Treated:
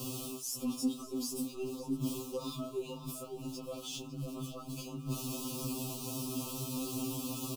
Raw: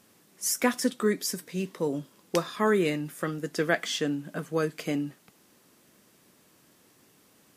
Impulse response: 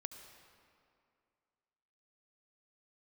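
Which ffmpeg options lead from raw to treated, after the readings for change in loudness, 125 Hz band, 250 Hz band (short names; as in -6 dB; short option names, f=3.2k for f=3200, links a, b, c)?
-9.5 dB, -3.5 dB, -6.0 dB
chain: -filter_complex "[0:a]aeval=exprs='val(0)+0.5*0.0168*sgn(val(0))':c=same,bass=f=250:g=8,treble=f=4k:g=2,alimiter=limit=-17dB:level=0:latency=1:release=178,areverse,acompressor=threshold=-34dB:ratio=8,areverse,equalizer=f=290:t=o:w=0.38:g=11,asplit=2[a][b];[b]asoftclip=type=hard:threshold=-33dB,volume=-8dB[c];[a][c]amix=inputs=2:normalize=0,asuperstop=centerf=1800:order=20:qfactor=1.6,asplit=2[d][e];[e]adelay=553.9,volume=-7dB,highshelf=f=4k:g=-12.5[f];[d][f]amix=inputs=2:normalize=0,afftfilt=real='re*2.45*eq(mod(b,6),0)':imag='im*2.45*eq(mod(b,6),0)':win_size=2048:overlap=0.75,volume=-2.5dB"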